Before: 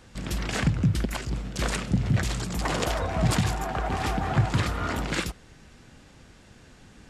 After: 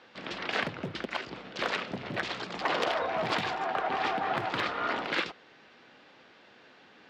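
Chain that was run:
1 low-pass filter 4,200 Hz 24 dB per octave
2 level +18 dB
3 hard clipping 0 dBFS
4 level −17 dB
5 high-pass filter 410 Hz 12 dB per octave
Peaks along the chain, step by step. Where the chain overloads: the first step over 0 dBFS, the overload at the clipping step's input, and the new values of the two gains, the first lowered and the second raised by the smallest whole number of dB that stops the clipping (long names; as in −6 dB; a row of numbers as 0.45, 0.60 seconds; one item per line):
−12.0, +6.0, 0.0, −17.0, −13.5 dBFS
step 2, 6.0 dB
step 2 +12 dB, step 4 −11 dB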